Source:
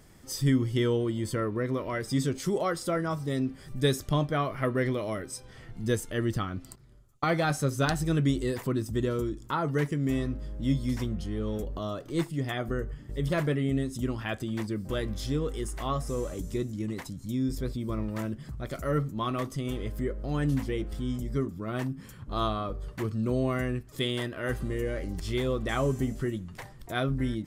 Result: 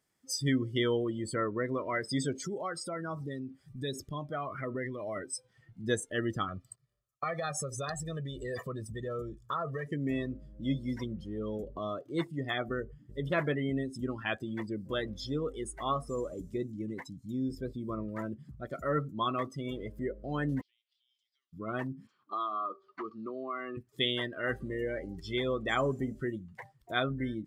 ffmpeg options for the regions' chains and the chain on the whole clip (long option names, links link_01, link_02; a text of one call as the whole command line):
ffmpeg -i in.wav -filter_complex "[0:a]asettb=1/sr,asplit=3[link_01][link_02][link_03];[link_01]atrim=end=2.424[link_04];[link_02]atrim=start=2.42:end=5.16,asetpts=PTS-STARTPTS,afade=type=in:duration=0.004:curve=qsin,afade=type=out:start_time=2.736:duration=0.004:curve=qsin,acompressor=threshold=-32dB:ratio=3:attack=3.2:release=140:knee=1:detection=peak,aphaser=in_gain=1:out_gain=1:delay=1.6:decay=0.28:speed=1.3:type=triangular[link_05];[link_03]atrim=start=5.156[link_06];[link_04][link_05]acrossfade=duration=0.004:curve1=hsin:curve2=qsin[link_07];[link_07][link_06]acrossfade=duration=0.004:curve1=qsin:curve2=hsin,asettb=1/sr,asplit=3[link_08][link_09][link_10];[link_08]atrim=end=6.484[link_11];[link_09]atrim=start=6.48:end=9.87,asetpts=PTS-STARTPTS,afade=type=in:duration=0.004:curve=qsin,afade=type=out:start_time=3.386:duration=0.004:curve=qsin,aecho=1:1:1.7:0.7,atrim=end_sample=149499,acompressor=threshold=-28dB:ratio=20:attack=3.2:release=140:knee=1:detection=peak,asoftclip=type=hard:threshold=-26dB[link_12];[link_10]atrim=start=9.866[link_13];[link_11][link_12]acrossfade=duration=0.004:curve1=hsin:curve2=qsin[link_14];[link_14][link_13]acrossfade=duration=0.004:curve1=qsin:curve2=hsin,asettb=1/sr,asplit=3[link_15][link_16][link_17];[link_15]atrim=end=20.614[link_18];[link_16]atrim=start=20.61:end=21.53,asetpts=PTS-STARTPTS,afade=type=in:duration=0.004:curve=qsin,afade=type=out:start_time=0.916:duration=0.004:curve=qsin,asuperpass=centerf=3600:order=4:qfactor=1.8,acompressor=threshold=-58dB:ratio=2.5:attack=3.2:release=140:knee=1:detection=peak[link_19];[link_17]atrim=start=21.526[link_20];[link_18][link_19]acrossfade=duration=0.004:curve1=hsin:curve2=qsin[link_21];[link_21][link_20]acrossfade=duration=0.004:curve1=qsin:curve2=hsin,asettb=1/sr,asplit=3[link_22][link_23][link_24];[link_22]atrim=end=22.074[link_25];[link_23]atrim=start=22.07:end=23.77,asetpts=PTS-STARTPTS,afade=type=in:duration=0.004:curve=qsin,afade=type=out:start_time=1.696:duration=0.004:curve=qsin,highpass=330,equalizer=frequency=340:width_type=q:width=4:gain=4,equalizer=frequency=520:width_type=q:width=4:gain=-6,equalizer=frequency=1200:width_type=q:width=4:gain=8,equalizer=frequency=1800:width_type=q:width=4:gain=-5,equalizer=frequency=4300:width_type=q:width=4:gain=3,lowpass=frequency=5300:width=0.5412,lowpass=frequency=5300:width=1.3066,acompressor=threshold=-31dB:ratio=8:attack=3.2:release=140:knee=1:detection=peak[link_26];[link_24]atrim=start=23.766[link_27];[link_25][link_26]acrossfade=duration=0.004:curve1=hsin:curve2=qsin[link_28];[link_28][link_27]acrossfade=duration=0.004:curve1=qsin:curve2=hsin,highpass=frequency=160:poles=1,afftdn=noise_reduction=22:noise_floor=-38,tiltshelf=frequency=730:gain=-3.5" out.wav